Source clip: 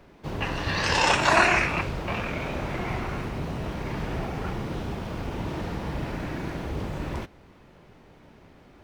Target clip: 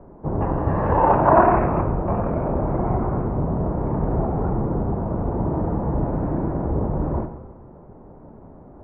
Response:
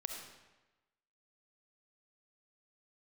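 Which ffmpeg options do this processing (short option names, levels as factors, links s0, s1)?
-filter_complex "[0:a]lowpass=f=1000:w=0.5412,lowpass=f=1000:w=1.3066,asplit=2[s0][s1];[1:a]atrim=start_sample=2205[s2];[s1][s2]afir=irnorm=-1:irlink=0,volume=1.19[s3];[s0][s3]amix=inputs=2:normalize=0,volume=1.41"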